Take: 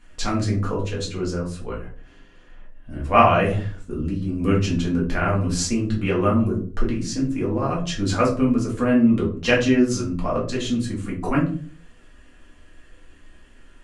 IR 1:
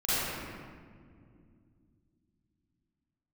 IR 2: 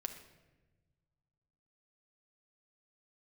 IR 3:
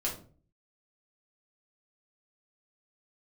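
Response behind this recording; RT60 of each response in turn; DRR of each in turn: 3; 2.2, 1.2, 0.45 s; -14.0, 5.0, -4.5 dB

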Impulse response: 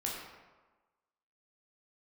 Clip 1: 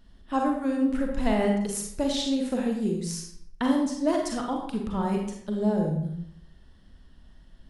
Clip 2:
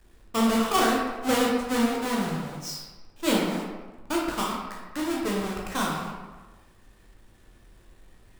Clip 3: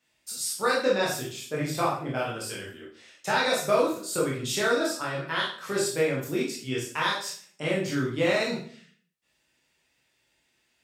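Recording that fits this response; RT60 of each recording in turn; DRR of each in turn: 2; 0.70, 1.3, 0.50 s; 0.5, -3.5, -5.5 dB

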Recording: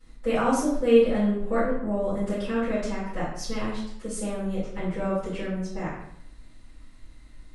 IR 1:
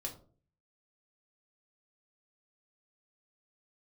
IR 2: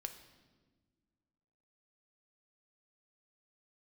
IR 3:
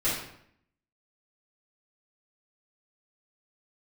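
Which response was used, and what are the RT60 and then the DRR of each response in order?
3; 0.45 s, not exponential, 0.70 s; 0.0, 6.5, -12.5 dB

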